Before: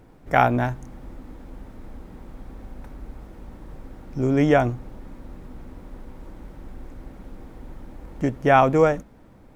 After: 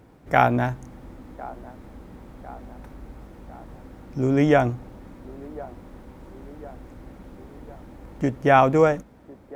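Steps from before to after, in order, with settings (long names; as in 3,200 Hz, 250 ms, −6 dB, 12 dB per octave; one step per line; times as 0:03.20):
high-pass filter 48 Hz
delay with a band-pass on its return 1,052 ms, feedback 57%, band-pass 600 Hz, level −18 dB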